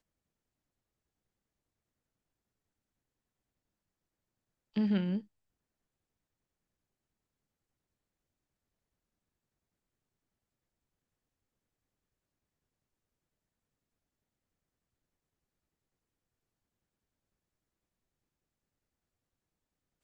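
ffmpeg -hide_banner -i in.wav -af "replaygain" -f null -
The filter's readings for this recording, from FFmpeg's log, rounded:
track_gain = +64.0 dB
track_peak = 0.074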